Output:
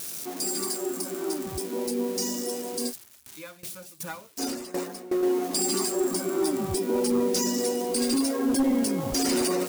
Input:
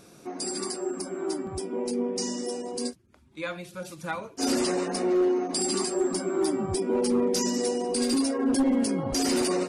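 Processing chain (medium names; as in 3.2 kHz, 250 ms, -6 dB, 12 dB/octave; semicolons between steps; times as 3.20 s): zero-crossing glitches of -27.5 dBFS; 2.89–5.23 s: sawtooth tremolo in dB decaying 2.7 Hz, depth 19 dB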